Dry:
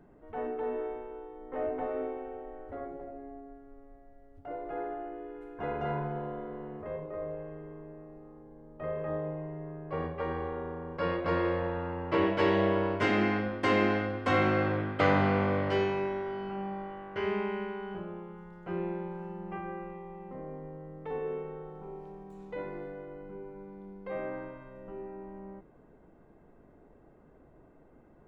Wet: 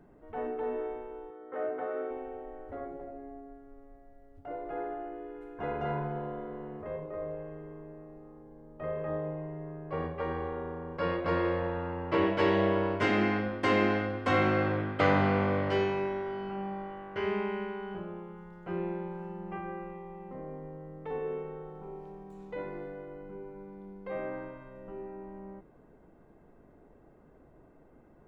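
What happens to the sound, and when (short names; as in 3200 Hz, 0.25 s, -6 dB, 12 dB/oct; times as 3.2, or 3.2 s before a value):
1.3–2.11 speaker cabinet 190–4000 Hz, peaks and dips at 250 Hz -7 dB, 920 Hz -6 dB, 1400 Hz +8 dB, 2600 Hz -5 dB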